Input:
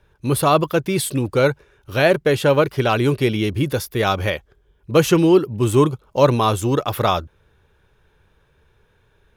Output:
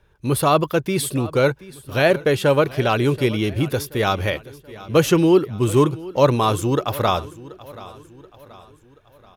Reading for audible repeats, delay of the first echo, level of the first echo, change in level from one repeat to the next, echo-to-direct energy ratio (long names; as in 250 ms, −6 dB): 3, 730 ms, −19.0 dB, −6.5 dB, −18.0 dB